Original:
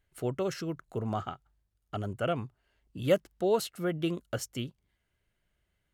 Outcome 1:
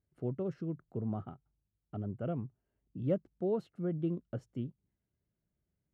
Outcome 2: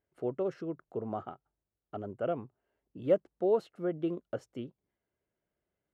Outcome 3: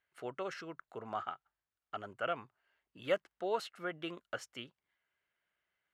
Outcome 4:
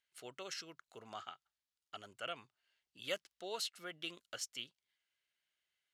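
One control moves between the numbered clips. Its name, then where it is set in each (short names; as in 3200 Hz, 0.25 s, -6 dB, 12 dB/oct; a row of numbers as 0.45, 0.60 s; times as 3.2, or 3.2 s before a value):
band-pass, frequency: 180, 440, 1500, 4200 Hz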